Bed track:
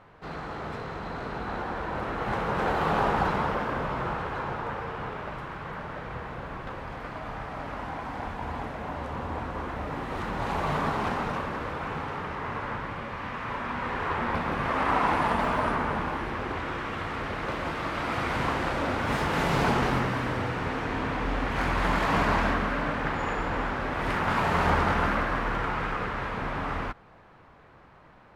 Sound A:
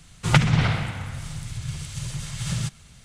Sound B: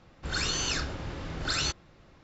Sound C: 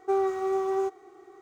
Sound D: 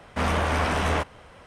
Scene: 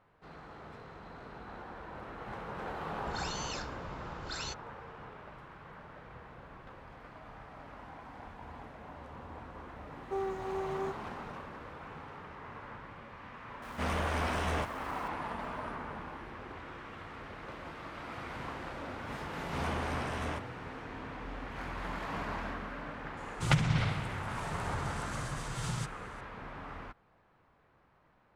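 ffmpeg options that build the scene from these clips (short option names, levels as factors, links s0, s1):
-filter_complex "[4:a]asplit=2[s0][s1];[0:a]volume=0.211[s2];[s0]aeval=exprs='val(0)+0.5*0.0112*sgn(val(0))':c=same[s3];[2:a]atrim=end=2.23,asetpts=PTS-STARTPTS,volume=0.282,afade=t=in:d=0.004:c=hsin,afade=t=out:st=2.226:d=0.004:c=hsin,adelay=2820[s4];[3:a]atrim=end=1.41,asetpts=PTS-STARTPTS,volume=0.316,afade=t=in:d=0.004:c=hsin,afade=t=out:st=1.406:d=0.004:c=hsin,adelay=10030[s5];[s3]atrim=end=1.46,asetpts=PTS-STARTPTS,volume=0.335,afade=t=in:d=0.004:c=hsin,afade=t=out:st=1.456:d=0.004:c=hsin,adelay=13620[s6];[s1]atrim=end=1.46,asetpts=PTS-STARTPTS,volume=0.211,afade=t=in:d=0.004:c=hsin,afade=t=out:st=1.456:d=0.004:c=hsin,adelay=19360[s7];[1:a]atrim=end=3.04,asetpts=PTS-STARTPTS,volume=0.335,afade=t=in:d=0.004:c=hsin,afade=t=out:st=3.036:d=0.004:c=hsin,adelay=23170[s8];[s2][s4][s5][s6][s7][s8]amix=inputs=6:normalize=0"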